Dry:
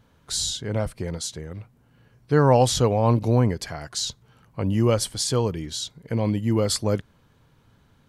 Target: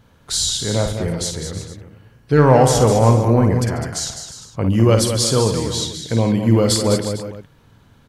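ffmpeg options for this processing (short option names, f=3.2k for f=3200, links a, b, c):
-filter_complex "[0:a]asettb=1/sr,asplit=3[a][b][c];[a]atrim=end=2.484[d];[b]atrim=start=2.48:end=4.63,asetpts=PTS-STARTPTS,afade=t=in:d=0.004:c=qsin,afade=t=out:st=2.146:d=0.004:c=qsin,equalizer=f=3.8k:t=o:w=0.64:g=-10[e];[c]atrim=start=4.626[f];[d][e]acrossfade=d=0.004:c1=hsin:c2=qsin[g];[g][f]acrossfade=d=0.004:c1=qsin:c2=hsin,acontrast=77,aecho=1:1:53|140|204|319|354|453:0.447|0.141|0.398|0.15|0.2|0.119,volume=-1dB"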